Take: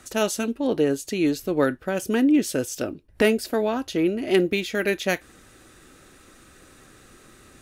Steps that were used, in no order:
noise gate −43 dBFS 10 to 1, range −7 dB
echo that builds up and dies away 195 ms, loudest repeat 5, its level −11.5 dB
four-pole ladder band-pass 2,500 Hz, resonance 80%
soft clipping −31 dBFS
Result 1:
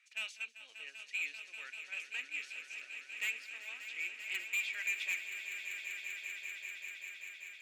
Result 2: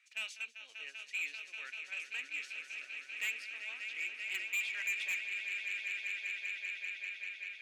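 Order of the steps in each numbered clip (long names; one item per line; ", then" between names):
four-pole ladder band-pass, then soft clipping, then noise gate, then echo that builds up and dies away
four-pole ladder band-pass, then noise gate, then echo that builds up and dies away, then soft clipping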